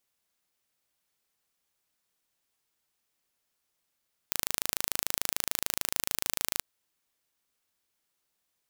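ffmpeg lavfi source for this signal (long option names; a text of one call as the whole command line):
ffmpeg -f lavfi -i "aevalsrc='0.891*eq(mod(n,1646),0)':duration=2.3:sample_rate=44100" out.wav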